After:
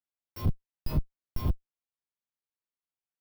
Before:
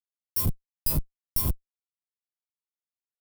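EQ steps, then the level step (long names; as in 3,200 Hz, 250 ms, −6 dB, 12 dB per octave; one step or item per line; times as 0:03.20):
high-frequency loss of the air 280 metres
high-shelf EQ 9,900 Hz +11 dB
0.0 dB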